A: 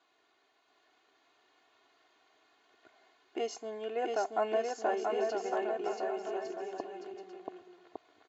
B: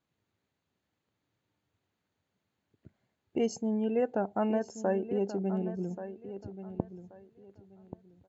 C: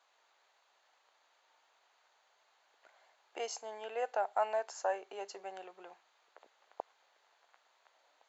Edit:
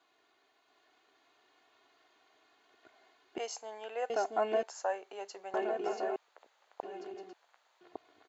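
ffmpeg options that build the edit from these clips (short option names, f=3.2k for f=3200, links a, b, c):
-filter_complex "[2:a]asplit=4[a][b][c][d];[0:a]asplit=5[e][f][g][h][i];[e]atrim=end=3.382[j];[a]atrim=start=3.378:end=4.102[k];[f]atrim=start=4.098:end=4.632[l];[b]atrim=start=4.628:end=5.542[m];[g]atrim=start=5.538:end=6.162[n];[c]atrim=start=6.158:end=6.832[o];[h]atrim=start=6.828:end=7.332[p];[d]atrim=start=7.328:end=7.812[q];[i]atrim=start=7.808[r];[j][k]acrossfade=d=0.004:c1=hsin:c2=hsin[s];[s][l]acrossfade=d=0.004:c1=hsin:c2=hsin[t];[t][m]acrossfade=d=0.004:c1=hsin:c2=hsin[u];[u][n]acrossfade=d=0.004:c1=hsin:c2=hsin[v];[v][o]acrossfade=d=0.004:c1=hsin:c2=hsin[w];[w][p]acrossfade=d=0.004:c1=hsin:c2=hsin[x];[x][q]acrossfade=d=0.004:c1=hsin:c2=hsin[y];[y][r]acrossfade=d=0.004:c1=hsin:c2=hsin"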